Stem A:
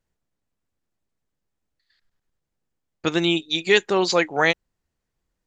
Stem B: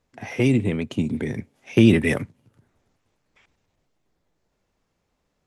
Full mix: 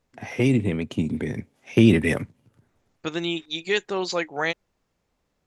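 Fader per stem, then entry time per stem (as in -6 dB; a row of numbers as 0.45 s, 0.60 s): -6.5 dB, -1.0 dB; 0.00 s, 0.00 s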